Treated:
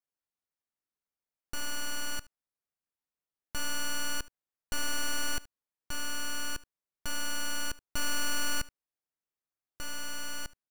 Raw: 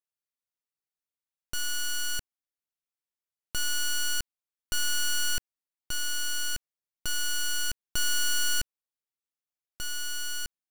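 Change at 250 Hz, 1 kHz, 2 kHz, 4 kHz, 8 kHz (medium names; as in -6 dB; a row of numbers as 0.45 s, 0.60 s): +7.5 dB, +1.0 dB, -3.0 dB, -6.5 dB, -6.0 dB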